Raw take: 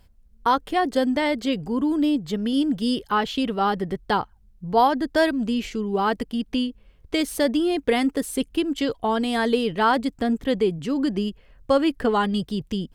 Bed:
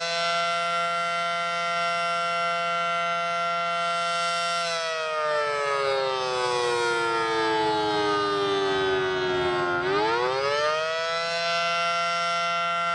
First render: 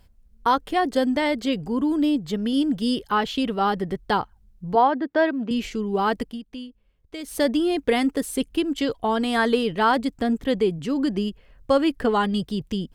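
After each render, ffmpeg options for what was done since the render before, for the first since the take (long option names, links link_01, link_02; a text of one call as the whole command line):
ffmpeg -i in.wav -filter_complex "[0:a]asettb=1/sr,asplit=3[link_01][link_02][link_03];[link_01]atrim=end=4.754[link_04];[link_02]atrim=start=4.75:end=5.51,asetpts=PTS-STARTPTS,afade=type=in:duration=0.004:curve=qsin,afade=type=out:start_time=0.756:duration=0.004:curve=qsin,highpass=230,lowpass=2400[link_05];[link_03]atrim=start=5.506[link_06];[link_04][link_05]acrossfade=duration=0.004:curve1=hsin:curve2=qsin[link_07];[link_07][link_06]acrossfade=duration=0.004:curve1=qsin:curve2=hsin,asettb=1/sr,asplit=3[link_08][link_09][link_10];[link_08]atrim=end=9.194[link_11];[link_09]atrim=start=9.19:end=9.63,asetpts=PTS-STARTPTS,afade=type=in:duration=0.004:curve=qsin,afade=type=out:start_time=0.436:duration=0.004:curve=qsin,equalizer=frequency=1300:width=1.5:gain=6[link_12];[link_10]atrim=start=9.626[link_13];[link_11][link_12]acrossfade=duration=0.004:curve1=hsin:curve2=qsin[link_14];[link_14][link_13]acrossfade=duration=0.004:curve1=qsin:curve2=hsin,asplit=3[link_15][link_16][link_17];[link_15]atrim=end=6.41,asetpts=PTS-STARTPTS,afade=type=out:start_time=6.23:duration=0.18:silence=0.251189[link_18];[link_16]atrim=start=6.41:end=7.22,asetpts=PTS-STARTPTS,volume=-12dB[link_19];[link_17]atrim=start=7.22,asetpts=PTS-STARTPTS,afade=type=in:duration=0.18:silence=0.251189[link_20];[link_18][link_19][link_20]concat=n=3:v=0:a=1" out.wav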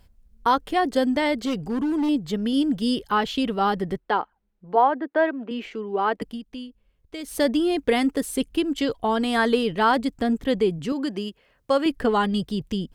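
ffmpeg -i in.wav -filter_complex "[0:a]asettb=1/sr,asplit=3[link_01][link_02][link_03];[link_01]atrim=end=1.384[link_04];[link_02]atrim=start=1.38:end=2.09,asetpts=PTS-STARTPTS,afade=type=in:duration=0.004:curve=qsin,afade=type=out:start_time=0.706:duration=0.004:curve=qsin,volume=20.5dB,asoftclip=hard,volume=-20.5dB[link_05];[link_03]atrim=start=2.086[link_06];[link_04][link_05]acrossfade=duration=0.004:curve1=hsin:curve2=qsin[link_07];[link_07][link_06]acrossfade=duration=0.004:curve1=qsin:curve2=hsin,asettb=1/sr,asplit=3[link_08][link_09][link_10];[link_08]atrim=end=3.984[link_11];[link_09]atrim=start=3.98:end=6.22,asetpts=PTS-STARTPTS,afade=type=in:duration=0.004:curve=qsin,afade=type=out:start_time=2.236:duration=0.004:curve=qsin,acrossover=split=260 3100:gain=0.0891 1 0.141[link_12][link_13][link_14];[link_12][link_13][link_14]amix=inputs=3:normalize=0[link_15];[link_10]atrim=start=6.216[link_16];[link_11][link_15]acrossfade=duration=0.004:curve1=hsin:curve2=qsin[link_17];[link_17][link_16]acrossfade=duration=0.004:curve1=qsin:curve2=hsin,asettb=1/sr,asplit=3[link_18][link_19][link_20];[link_18]atrim=end=10.924[link_21];[link_19]atrim=start=10.92:end=11.86,asetpts=PTS-STARTPTS,afade=type=in:duration=0.004:curve=qsin,afade=type=out:start_time=0.936:duration=0.004:curve=qsin,highpass=frequency=370:poles=1[link_22];[link_20]atrim=start=11.856[link_23];[link_21][link_22]acrossfade=duration=0.004:curve1=hsin:curve2=qsin[link_24];[link_24][link_23]acrossfade=duration=0.004:curve1=qsin:curve2=hsin" out.wav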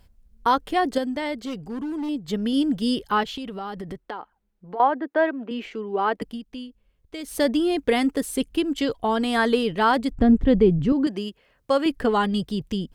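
ffmpeg -i in.wav -filter_complex "[0:a]asettb=1/sr,asplit=3[link_01][link_02][link_03];[link_01]atrim=end=3.234[link_04];[link_02]atrim=start=3.23:end=4.8,asetpts=PTS-STARTPTS,afade=type=in:duration=0.004:curve=qsin,afade=type=out:start_time=1.566:duration=0.004:curve=qsin,acompressor=threshold=-30dB:ratio=5:attack=3.2:release=140:knee=1:detection=peak[link_05];[link_03]atrim=start=4.796[link_06];[link_04][link_05]acrossfade=duration=0.004:curve1=hsin:curve2=qsin[link_07];[link_07][link_06]acrossfade=duration=0.004:curve1=qsin:curve2=hsin,asettb=1/sr,asplit=3[link_08][link_09][link_10];[link_08]atrim=end=10.114[link_11];[link_09]atrim=start=10.11:end=11.07,asetpts=PTS-STARTPTS,afade=type=in:duration=0.004:curve=qsin,afade=type=out:start_time=0.956:duration=0.004:curve=qsin,aemphasis=mode=reproduction:type=riaa[link_12];[link_10]atrim=start=11.066[link_13];[link_11][link_12]acrossfade=duration=0.004:curve1=hsin:curve2=qsin[link_14];[link_14][link_13]acrossfade=duration=0.004:curve1=qsin:curve2=hsin,asplit=3[link_15][link_16][link_17];[link_15]atrim=end=0.982[link_18];[link_16]atrim=start=0.978:end=2.282,asetpts=PTS-STARTPTS,volume=-5.5dB[link_19];[link_17]atrim=start=2.278[link_20];[link_18][link_19]acrossfade=duration=0.004:curve1=hsin:curve2=hsin[link_21];[link_21][link_20]acrossfade=duration=0.004:curve1=hsin:curve2=hsin" out.wav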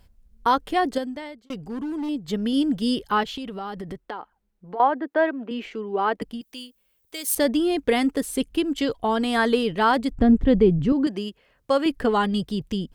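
ffmpeg -i in.wav -filter_complex "[0:a]asettb=1/sr,asplit=3[link_01][link_02][link_03];[link_01]atrim=end=6.414[link_04];[link_02]atrim=start=6.41:end=7.35,asetpts=PTS-STARTPTS,afade=type=in:duration=0.004:curve=qsin,afade=type=out:start_time=0.936:duration=0.004:curve=qsin,aemphasis=mode=production:type=riaa[link_05];[link_03]atrim=start=7.346[link_06];[link_04][link_05]acrossfade=duration=0.004:curve1=hsin:curve2=qsin[link_07];[link_07][link_06]acrossfade=duration=0.004:curve1=qsin:curve2=hsin,asplit=2[link_08][link_09];[link_08]atrim=end=1.5,asetpts=PTS-STARTPTS,afade=type=out:start_time=0.85:duration=0.65[link_10];[link_09]atrim=start=1.5,asetpts=PTS-STARTPTS,afade=type=in:duration=0.004:curve=hsin[link_11];[link_10][link_11]concat=n=2:v=0:a=1" out.wav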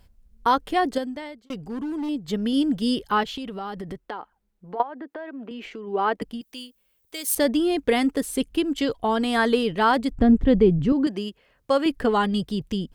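ffmpeg -i in.wav -filter_complex "[0:a]asplit=3[link_01][link_02][link_03];[link_01]afade=type=out:start_time=4.81:duration=0.02[link_04];[link_02]acompressor=threshold=-32dB:ratio=8:attack=3.2:release=140:knee=1:detection=peak,afade=type=in:start_time=4.81:duration=0.02,afade=type=out:start_time=5.86:duration=0.02[link_05];[link_03]afade=type=in:start_time=5.86:duration=0.02[link_06];[link_04][link_05][link_06]amix=inputs=3:normalize=0" out.wav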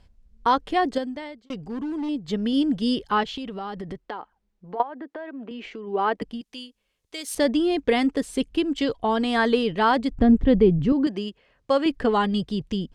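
ffmpeg -i in.wav -af "lowpass=6700,equalizer=frequency=1400:width=7.9:gain=-2.5" out.wav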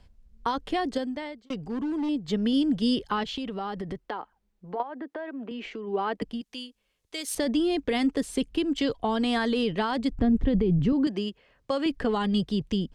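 ffmpeg -i in.wav -filter_complex "[0:a]alimiter=limit=-14.5dB:level=0:latency=1:release=17,acrossover=split=240|3000[link_01][link_02][link_03];[link_02]acompressor=threshold=-25dB:ratio=6[link_04];[link_01][link_04][link_03]amix=inputs=3:normalize=0" out.wav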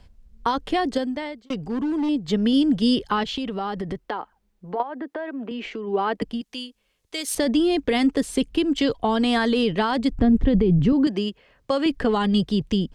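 ffmpeg -i in.wav -af "volume=5dB" out.wav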